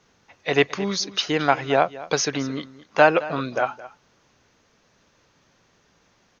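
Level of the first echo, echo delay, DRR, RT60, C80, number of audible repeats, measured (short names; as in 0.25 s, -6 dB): -17.5 dB, 0.218 s, none, none, none, 1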